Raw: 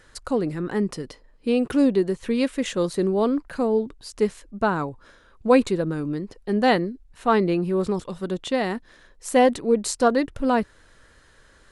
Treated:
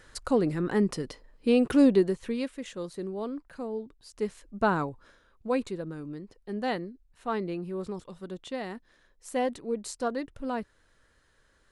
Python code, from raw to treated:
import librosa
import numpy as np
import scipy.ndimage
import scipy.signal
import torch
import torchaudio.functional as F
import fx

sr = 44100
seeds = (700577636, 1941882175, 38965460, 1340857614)

y = fx.gain(x, sr, db=fx.line((1.98, -1.0), (2.6, -13.0), (3.97, -13.0), (4.72, -2.0), (5.48, -11.5)))